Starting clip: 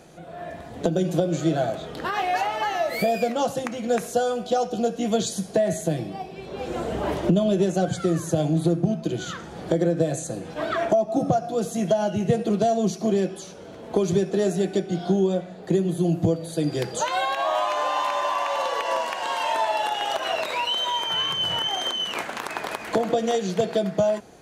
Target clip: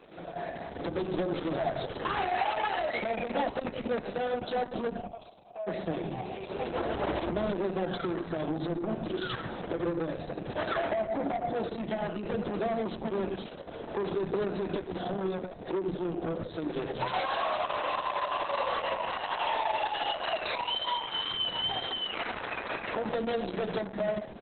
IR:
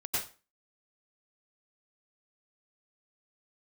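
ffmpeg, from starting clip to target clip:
-filter_complex "[0:a]asettb=1/sr,asplit=3[link_01][link_02][link_03];[link_01]atrim=end=15.794[link_04];[link_02]atrim=start=15.79:end=16.34,asetpts=PTS-STARTPTS,afade=type=in:duration=0.004:curve=qsin,afade=type=out:start_time=0.546:duration=0.004:curve=qsin,bandreject=frequency=60:width_type=h:width=6,bandreject=frequency=120:width_type=h:width=6,bandreject=frequency=180:width_type=h:width=6[link_05];[link_03]atrim=start=16.336[link_06];[link_04][link_05]acrossfade=duration=0.004:curve1=hsin:curve2=qsin[link_07];[link_07][link_06]acrossfade=duration=0.004:curve1=qsin:curve2=hsin,asettb=1/sr,asplit=3[link_08][link_09][link_10];[link_08]atrim=end=21.074[link_11];[link_09]atrim=start=21.07:end=21.93,asetpts=PTS-STARTPTS,afade=type=in:duration=0.004:curve=qsin,afade=type=out:start_time=0.856:duration=0.004:curve=qsin,adynamicequalizer=threshold=0.00447:dfrequency=3800:dqfactor=5:tfrequency=3800:tqfactor=5:attack=5:release=100:ratio=0.375:range=4:mode=boostabove:tftype=bell[link_12];[link_10]atrim=start=21.926[link_13];[link_11][link_12]acrossfade=duration=0.004:curve1=hsin:curve2=qsin[link_14];[link_14][link_13]acrossfade=duration=0.004:curve1=qsin:curve2=hsin,acrossover=split=200|410[link_15][link_16][link_17];[link_15]acompressor=threshold=-36dB:ratio=4[link_18];[link_16]acompressor=threshold=-27dB:ratio=4[link_19];[link_17]acompressor=threshold=-25dB:ratio=4[link_20];[link_18][link_19][link_20]amix=inputs=3:normalize=0,asoftclip=type=tanh:threshold=-27dB,aexciter=amount=8.2:drive=4.2:freq=9400,asplit=3[link_21][link_22][link_23];[link_21]afade=type=out:start_time=4.96:duration=0.02[link_24];[link_22]asplit=3[link_25][link_26][link_27];[link_25]bandpass=frequency=730:width_type=q:width=8,volume=0dB[link_28];[link_26]bandpass=frequency=1090:width_type=q:width=8,volume=-6dB[link_29];[link_27]bandpass=frequency=2440:width_type=q:width=8,volume=-9dB[link_30];[link_28][link_29][link_30]amix=inputs=3:normalize=0,afade=type=in:start_time=4.96:duration=0.02,afade=type=out:start_time=5.66:duration=0.02[link_31];[link_23]afade=type=in:start_time=5.66:duration=0.02[link_32];[link_24][link_31][link_32]amix=inputs=3:normalize=0,asoftclip=type=hard:threshold=-21dB,acrossover=split=170[link_33][link_34];[link_33]adelay=170[link_35];[link_35][link_34]amix=inputs=2:normalize=0,asplit=2[link_36][link_37];[1:a]atrim=start_sample=2205,lowpass=2800[link_38];[link_37][link_38]afir=irnorm=-1:irlink=0,volume=-13.5dB[link_39];[link_36][link_39]amix=inputs=2:normalize=0" -ar 48000 -c:a libopus -b:a 6k

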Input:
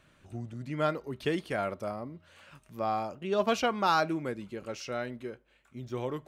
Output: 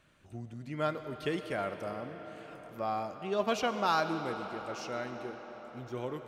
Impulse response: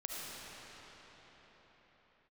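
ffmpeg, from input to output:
-filter_complex "[0:a]asplit=2[link_01][link_02];[1:a]atrim=start_sample=2205,asetrate=33516,aresample=44100,lowshelf=frequency=230:gain=-9[link_03];[link_02][link_03]afir=irnorm=-1:irlink=0,volume=-8dB[link_04];[link_01][link_04]amix=inputs=2:normalize=0,volume=-5dB"

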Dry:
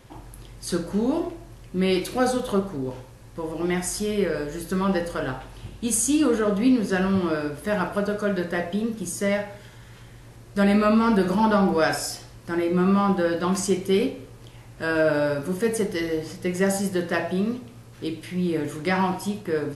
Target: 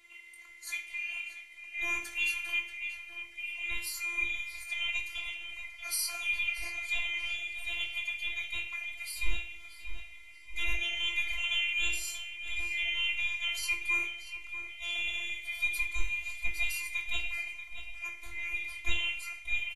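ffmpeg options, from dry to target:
ffmpeg -i in.wav -filter_complex "[0:a]afftfilt=real='real(if(lt(b,920),b+92*(1-2*mod(floor(b/92),2)),b),0)':imag='imag(if(lt(b,920),b+92*(1-2*mod(floor(b/92),2)),b),0)':win_size=2048:overlap=0.75,asubboost=boost=9.5:cutoff=66,afftfilt=real='hypot(re,im)*cos(PI*b)':imag='0':win_size=512:overlap=0.75,asplit=2[link_01][link_02];[link_02]adelay=21,volume=-7dB[link_03];[link_01][link_03]amix=inputs=2:normalize=0,asplit=2[link_04][link_05];[link_05]adelay=634,lowpass=frequency=3800:poles=1,volume=-10dB,asplit=2[link_06][link_07];[link_07]adelay=634,lowpass=frequency=3800:poles=1,volume=0.53,asplit=2[link_08][link_09];[link_09]adelay=634,lowpass=frequency=3800:poles=1,volume=0.53,asplit=2[link_10][link_11];[link_11]adelay=634,lowpass=frequency=3800:poles=1,volume=0.53,asplit=2[link_12][link_13];[link_13]adelay=634,lowpass=frequency=3800:poles=1,volume=0.53,asplit=2[link_14][link_15];[link_15]adelay=634,lowpass=frequency=3800:poles=1,volume=0.53[link_16];[link_04][link_06][link_08][link_10][link_12][link_14][link_16]amix=inputs=7:normalize=0,volume=-6.5dB" out.wav

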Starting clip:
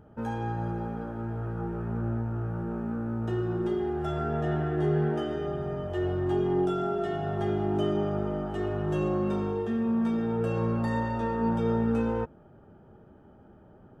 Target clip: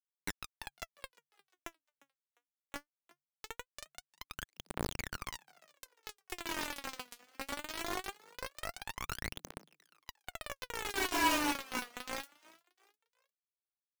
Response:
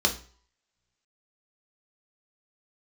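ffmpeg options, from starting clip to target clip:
-filter_complex "[0:a]acrossover=split=1800[link_01][link_02];[link_01]asoftclip=type=tanh:threshold=-30dB[link_03];[link_02]acompressor=threshold=-60dB:ratio=12[link_04];[link_03][link_04]amix=inputs=2:normalize=0,asettb=1/sr,asplit=3[link_05][link_06][link_07];[link_05]atrim=end=3.454[link_08];[link_06]atrim=start=3.45:end=4.11,asetpts=PTS-STARTPTS,afade=type=in:duration=0.004:curve=qsin,afade=type=out:start_time=0.656:duration=0.004:curve=qsin,adynamicequalizer=threshold=0.00141:dfrequency=1800:dqfactor=1.2:tfrequency=1800:tqfactor=1.2:attack=5:release=100:ratio=0.375:range=4:mode=boostabove:tftype=bell[link_09];[link_07]atrim=start=4.106[link_10];[link_08][link_09]acrossfade=duration=0.004:curve1=hsin:curve2=qsin[link_11];[link_11][link_10]acrossfade=duration=0.004:curve1=qsin:curve2=hsin,alimiter=level_in=16.5dB:limit=-24dB:level=0:latency=1:release=288,volume=-16.5dB,afreqshift=69,highpass=330,equalizer=frequency=350:width_type=q:width=4:gain=6,equalizer=frequency=520:width_type=q:width=4:gain=-8,equalizer=frequency=950:width_type=q:width=4:gain=9,equalizer=frequency=1500:width_type=q:width=4:gain=-6,equalizer=frequency=2100:width_type=q:width=4:gain=-9,lowpass=frequency=2500:width=0.5412,lowpass=frequency=2500:width=1.3066,asplit=2[link_12][link_13];[link_13]adelay=46,volume=-3.5dB[link_14];[link_12][link_14]amix=inputs=2:normalize=0,acrusher=bits=5:mix=0:aa=0.000001,asplit=2[link_15][link_16];[link_16]asplit=3[link_17][link_18][link_19];[link_17]adelay=352,afreqshift=140,volume=-22.5dB[link_20];[link_18]adelay=704,afreqshift=280,volume=-30.7dB[link_21];[link_19]adelay=1056,afreqshift=420,volume=-38.9dB[link_22];[link_20][link_21][link_22]amix=inputs=3:normalize=0[link_23];[link_15][link_23]amix=inputs=2:normalize=0,aphaser=in_gain=1:out_gain=1:delay=4.2:decay=0.79:speed=0.21:type=triangular,volume=4.5dB"

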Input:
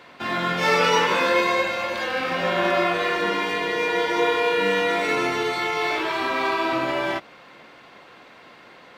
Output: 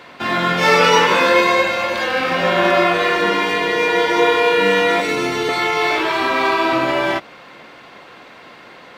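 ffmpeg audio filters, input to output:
ffmpeg -i in.wav -filter_complex "[0:a]asettb=1/sr,asplit=3[link_01][link_02][link_03];[link_01]atrim=end=5.004[link_04];[link_02]atrim=start=5:end=5.49,asetpts=PTS-STARTPTS,afade=type=in:duration=0.004:curve=qsin,afade=type=out:start_time=0.486:duration=0.004:curve=qsin,acrossover=split=430|3000[link_05][link_06][link_07];[link_06]acompressor=threshold=-29dB:ratio=6[link_08];[link_05][link_08][link_07]amix=inputs=3:normalize=0[link_09];[link_03]atrim=start=5.486[link_10];[link_04][link_09]acrossfade=duration=0.004:curve1=hsin:curve2=qsin[link_11];[link_11][link_10]acrossfade=duration=0.004:curve1=qsin:curve2=hsin,volume=6.5dB" out.wav

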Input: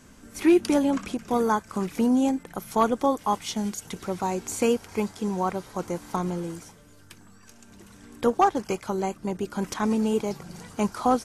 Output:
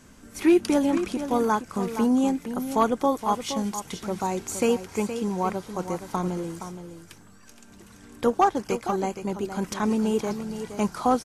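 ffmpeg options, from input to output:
ffmpeg -i in.wav -af "aecho=1:1:469:0.316" out.wav

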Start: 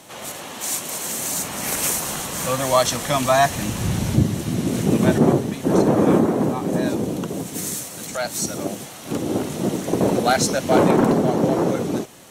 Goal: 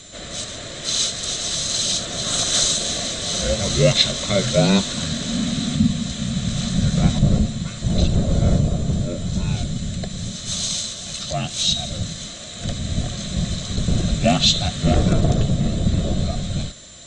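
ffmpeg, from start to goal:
ffmpeg -i in.wav -af "afreqshift=-430,aeval=exprs='val(0)+0.00355*sin(2*PI*10000*n/s)':channel_layout=same,asetrate=31796,aresample=44100,superequalizer=8b=2.24:9b=0.398:13b=3.55:15b=2:16b=0.355,volume=-1dB" out.wav

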